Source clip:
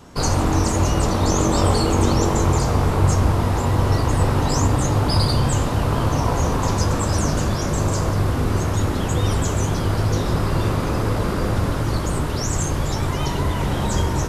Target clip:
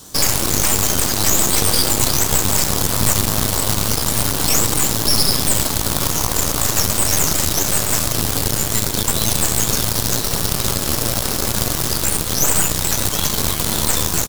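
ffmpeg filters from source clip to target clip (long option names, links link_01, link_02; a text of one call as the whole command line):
ffmpeg -i in.wav -filter_complex "[0:a]acrusher=bits=4:mode=log:mix=0:aa=0.000001,aexciter=amount=6.5:drive=4:freq=3000,asplit=2[link_01][link_02];[link_02]asplit=2[link_03][link_04];[link_03]adelay=154,afreqshift=32,volume=-23dB[link_05];[link_04]adelay=308,afreqshift=64,volume=-31.9dB[link_06];[link_05][link_06]amix=inputs=2:normalize=0[link_07];[link_01][link_07]amix=inputs=2:normalize=0,aeval=exprs='1.68*(cos(1*acos(clip(val(0)/1.68,-1,1)))-cos(1*PI/2))+0.0473*(cos(3*acos(clip(val(0)/1.68,-1,1)))-cos(3*PI/2))+0.422*(cos(4*acos(clip(val(0)/1.68,-1,1)))-cos(4*PI/2))+0.299*(cos(8*acos(clip(val(0)/1.68,-1,1)))-cos(8*PI/2))':channel_layout=same,asetrate=48091,aresample=44100,atempo=0.917004,alimiter=limit=-1dB:level=0:latency=1:release=111,volume=-1dB" out.wav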